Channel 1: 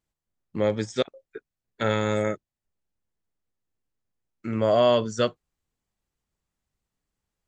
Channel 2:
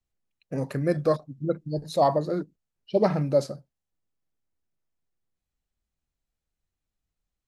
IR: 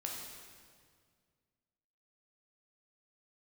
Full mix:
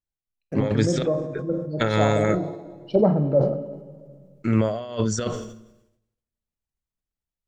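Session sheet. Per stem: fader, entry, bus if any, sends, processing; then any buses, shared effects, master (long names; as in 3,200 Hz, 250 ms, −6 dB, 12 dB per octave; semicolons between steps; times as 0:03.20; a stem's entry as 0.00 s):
+2.0 dB, 0.00 s, send −20.5 dB, compressor whose output falls as the input rises −26 dBFS, ratio −0.5
+1.0 dB, 0.00 s, send −6.5 dB, high-pass filter 130 Hz 24 dB per octave; treble cut that deepens with the level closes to 710 Hz, closed at −22 dBFS; automatic ducking −8 dB, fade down 1.30 s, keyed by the first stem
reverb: on, RT60 1.9 s, pre-delay 10 ms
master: noise gate with hold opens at −45 dBFS; low-shelf EQ 72 Hz +11.5 dB; level that may fall only so fast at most 68 dB per second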